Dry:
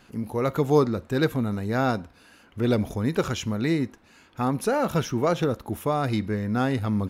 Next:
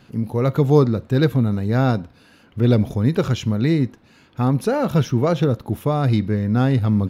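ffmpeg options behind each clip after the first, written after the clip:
ffmpeg -i in.wav -af "equalizer=frequency=125:width_type=o:width=1:gain=11,equalizer=frequency=250:width_type=o:width=1:gain=3,equalizer=frequency=500:width_type=o:width=1:gain=3,equalizer=frequency=4000:width_type=o:width=1:gain=4,equalizer=frequency=8000:width_type=o:width=1:gain=-4" out.wav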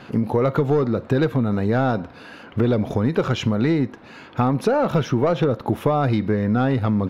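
ffmpeg -i in.wav -filter_complex "[0:a]asplit=2[link_01][link_02];[link_02]highpass=frequency=720:poles=1,volume=16dB,asoftclip=type=tanh:threshold=-3dB[link_03];[link_01][link_03]amix=inputs=2:normalize=0,lowpass=frequency=1200:poles=1,volume=-6dB,acompressor=threshold=-23dB:ratio=6,volume=6.5dB" out.wav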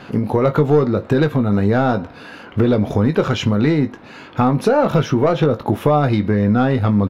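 ffmpeg -i in.wav -filter_complex "[0:a]asplit=2[link_01][link_02];[link_02]adelay=20,volume=-9dB[link_03];[link_01][link_03]amix=inputs=2:normalize=0,volume=3.5dB" out.wav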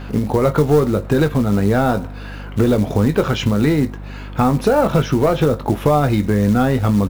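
ffmpeg -i in.wav -af "acrusher=bits=6:mode=log:mix=0:aa=0.000001,aeval=exprs='val(0)+0.0316*(sin(2*PI*50*n/s)+sin(2*PI*2*50*n/s)/2+sin(2*PI*3*50*n/s)/3+sin(2*PI*4*50*n/s)/4+sin(2*PI*5*50*n/s)/5)':channel_layout=same" out.wav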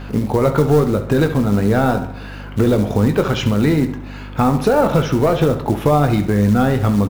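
ffmpeg -i in.wav -filter_complex "[0:a]asplit=2[link_01][link_02];[link_02]adelay=68,lowpass=frequency=4900:poles=1,volume=-11dB,asplit=2[link_03][link_04];[link_04]adelay=68,lowpass=frequency=4900:poles=1,volume=0.53,asplit=2[link_05][link_06];[link_06]adelay=68,lowpass=frequency=4900:poles=1,volume=0.53,asplit=2[link_07][link_08];[link_08]adelay=68,lowpass=frequency=4900:poles=1,volume=0.53,asplit=2[link_09][link_10];[link_10]adelay=68,lowpass=frequency=4900:poles=1,volume=0.53,asplit=2[link_11][link_12];[link_12]adelay=68,lowpass=frequency=4900:poles=1,volume=0.53[link_13];[link_01][link_03][link_05][link_07][link_09][link_11][link_13]amix=inputs=7:normalize=0" out.wav

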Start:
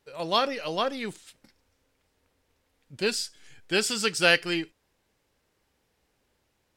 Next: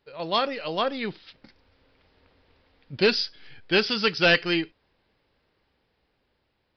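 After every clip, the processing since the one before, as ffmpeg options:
ffmpeg -i in.wav -af "dynaudnorm=framelen=200:gausssize=13:maxgain=13dB,aresample=11025,volume=13dB,asoftclip=hard,volume=-13dB,aresample=44100" out.wav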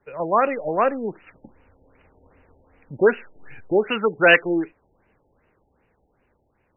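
ffmpeg -i in.wav -filter_complex "[0:a]acrossover=split=280|400|1400[link_01][link_02][link_03][link_04];[link_01]acompressor=threshold=-43dB:ratio=6[link_05];[link_05][link_02][link_03][link_04]amix=inputs=4:normalize=0,afftfilt=real='re*lt(b*sr/1024,880*pow(3000/880,0.5+0.5*sin(2*PI*2.6*pts/sr)))':imag='im*lt(b*sr/1024,880*pow(3000/880,0.5+0.5*sin(2*PI*2.6*pts/sr)))':win_size=1024:overlap=0.75,volume=7dB" out.wav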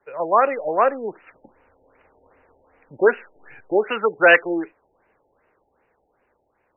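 ffmpeg -i in.wav -filter_complex "[0:a]acrossover=split=360 2600:gain=0.224 1 0.0891[link_01][link_02][link_03];[link_01][link_02][link_03]amix=inputs=3:normalize=0,volume=3dB" out.wav

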